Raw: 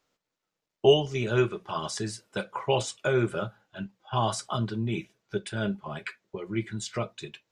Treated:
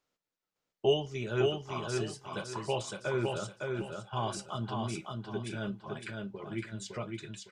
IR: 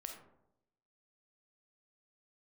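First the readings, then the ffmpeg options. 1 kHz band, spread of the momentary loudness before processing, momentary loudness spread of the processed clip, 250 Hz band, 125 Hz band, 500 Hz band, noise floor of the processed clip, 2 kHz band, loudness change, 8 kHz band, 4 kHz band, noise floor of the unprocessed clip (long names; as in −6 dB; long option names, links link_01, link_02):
−6.0 dB, 14 LU, 10 LU, −5.5 dB, −5.5 dB, −6.0 dB, below −85 dBFS, −6.0 dB, −6.0 dB, −6.0 dB, −6.0 dB, below −85 dBFS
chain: -af "aecho=1:1:559|1118|1677|2236:0.668|0.201|0.0602|0.018,volume=-7.5dB"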